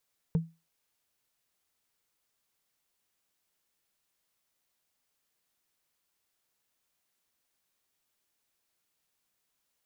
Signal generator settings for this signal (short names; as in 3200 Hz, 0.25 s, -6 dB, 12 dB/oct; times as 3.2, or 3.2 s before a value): wood hit, lowest mode 164 Hz, decay 0.26 s, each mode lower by 11.5 dB, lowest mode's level -19.5 dB